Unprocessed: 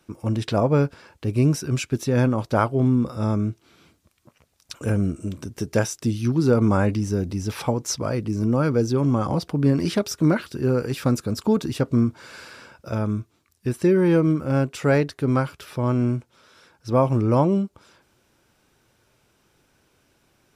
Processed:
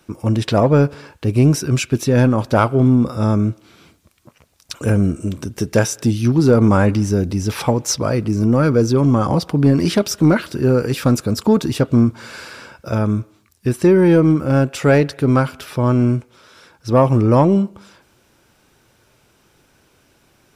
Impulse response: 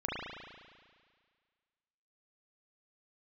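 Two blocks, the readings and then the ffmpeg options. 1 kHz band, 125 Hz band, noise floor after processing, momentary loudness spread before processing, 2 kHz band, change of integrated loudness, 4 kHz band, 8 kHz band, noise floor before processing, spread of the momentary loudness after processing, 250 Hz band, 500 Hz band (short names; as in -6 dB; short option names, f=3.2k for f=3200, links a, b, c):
+6.0 dB, +6.0 dB, -58 dBFS, 10 LU, +6.5 dB, +6.0 dB, +7.0 dB, +7.0 dB, -65 dBFS, 11 LU, +6.5 dB, +6.0 dB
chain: -filter_complex "[0:a]acontrast=76,asplit=2[a][b];[b]aemphasis=mode=production:type=bsi[c];[1:a]atrim=start_sample=2205,afade=t=out:st=0.33:d=0.01,atrim=end_sample=14994[d];[c][d]afir=irnorm=-1:irlink=0,volume=-28.5dB[e];[a][e]amix=inputs=2:normalize=0"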